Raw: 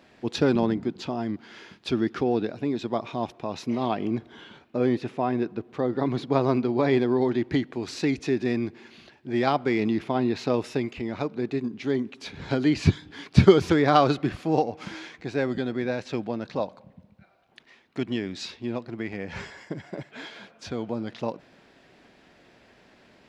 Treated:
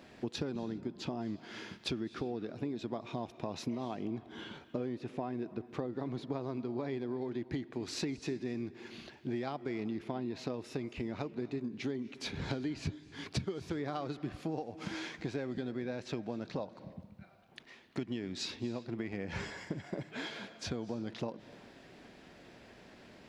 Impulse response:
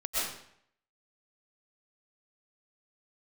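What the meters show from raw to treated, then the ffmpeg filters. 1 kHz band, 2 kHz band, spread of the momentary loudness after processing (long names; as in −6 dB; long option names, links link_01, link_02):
−15.5 dB, −11.0 dB, 13 LU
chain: -filter_complex "[0:a]equalizer=frequency=1700:width=0.32:gain=-3.5,acompressor=threshold=-36dB:ratio=12,asplit=2[link_01][link_02];[1:a]atrim=start_sample=2205,afade=type=out:start_time=0.26:duration=0.01,atrim=end_sample=11907,asetrate=22050,aresample=44100[link_03];[link_02][link_03]afir=irnorm=-1:irlink=0,volume=-29dB[link_04];[link_01][link_04]amix=inputs=2:normalize=0,volume=2dB"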